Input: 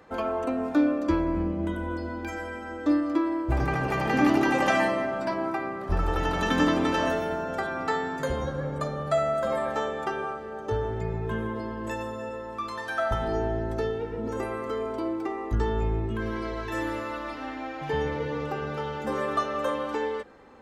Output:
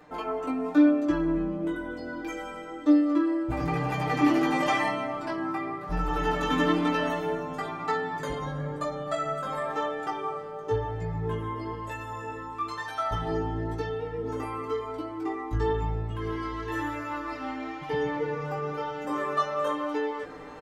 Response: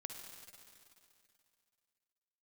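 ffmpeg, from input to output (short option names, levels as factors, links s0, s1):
-af "aecho=1:1:6.7:0.84,areverse,acompressor=mode=upward:threshold=0.0447:ratio=2.5,areverse,flanger=delay=16.5:depth=2.5:speed=1,volume=0.891"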